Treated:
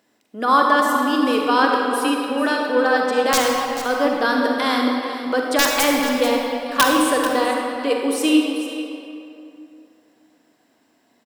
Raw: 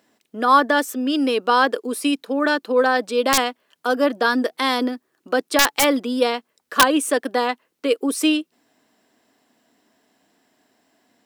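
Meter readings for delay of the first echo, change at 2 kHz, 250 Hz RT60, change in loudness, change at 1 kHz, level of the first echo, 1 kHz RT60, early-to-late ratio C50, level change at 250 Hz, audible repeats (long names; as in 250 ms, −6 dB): 439 ms, +1.0 dB, 2.9 s, +1.0 dB, +1.5 dB, −12.0 dB, 2.6 s, 0.0 dB, +2.0 dB, 1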